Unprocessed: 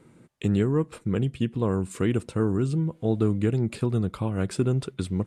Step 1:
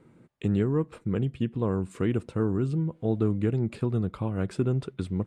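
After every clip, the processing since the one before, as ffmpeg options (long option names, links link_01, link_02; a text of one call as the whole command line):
ffmpeg -i in.wav -af "highshelf=frequency=4100:gain=-11,volume=-2dB" out.wav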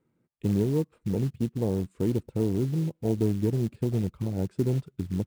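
ffmpeg -i in.wav -af "afwtdn=0.0447,acrusher=bits=6:mode=log:mix=0:aa=0.000001" out.wav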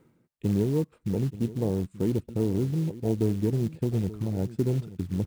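ffmpeg -i in.wav -af "areverse,acompressor=mode=upward:threshold=-27dB:ratio=2.5,areverse,aecho=1:1:880:0.158" out.wav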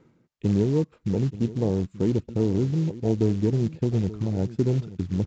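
ffmpeg -i in.wav -af "aresample=16000,aresample=44100,volume=3dB" out.wav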